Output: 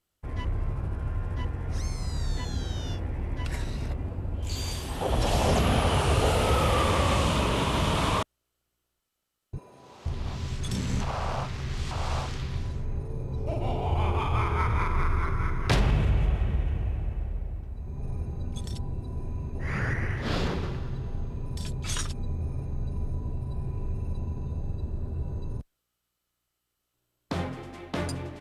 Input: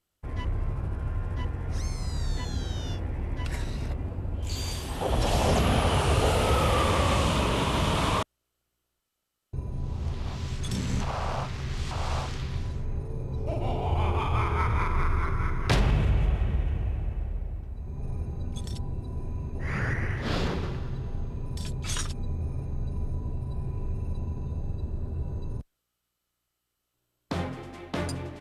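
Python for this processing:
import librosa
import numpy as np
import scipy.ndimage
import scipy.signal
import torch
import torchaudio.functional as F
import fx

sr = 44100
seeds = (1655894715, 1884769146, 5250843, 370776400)

y = fx.highpass(x, sr, hz=520.0, slope=12, at=(9.58, 10.06))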